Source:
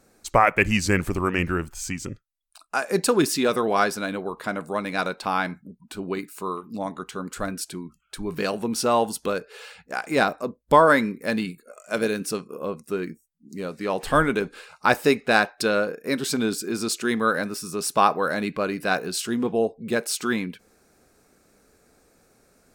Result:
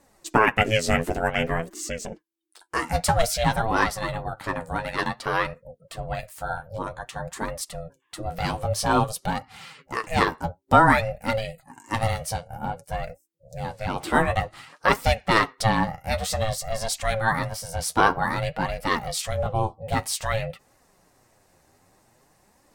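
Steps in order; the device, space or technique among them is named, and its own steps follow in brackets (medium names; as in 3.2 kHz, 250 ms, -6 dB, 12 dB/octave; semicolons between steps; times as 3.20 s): alien voice (ring modulator 330 Hz; flange 0.53 Hz, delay 3.3 ms, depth 9.5 ms, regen +33%); trim +6 dB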